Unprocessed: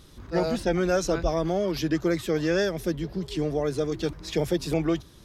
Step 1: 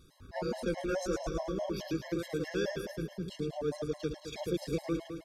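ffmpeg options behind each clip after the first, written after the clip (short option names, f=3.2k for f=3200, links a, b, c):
-af "aecho=1:1:108|216|324|432|540|648|756|864:0.562|0.332|0.196|0.115|0.0681|0.0402|0.0237|0.014,afftfilt=real='re*gt(sin(2*PI*4.7*pts/sr)*(1-2*mod(floor(b*sr/1024/550),2)),0)':imag='im*gt(sin(2*PI*4.7*pts/sr)*(1-2*mod(floor(b*sr/1024/550),2)),0)':win_size=1024:overlap=0.75,volume=-7.5dB"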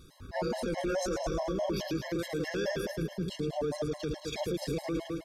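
-af "alimiter=level_in=6dB:limit=-24dB:level=0:latency=1:release=14,volume=-6dB,volume=5.5dB"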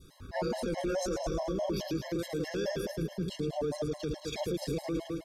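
-af "adynamicequalizer=threshold=0.00398:dfrequency=1700:dqfactor=0.82:tfrequency=1700:tqfactor=0.82:attack=5:release=100:ratio=0.375:range=2.5:mode=cutabove:tftype=bell"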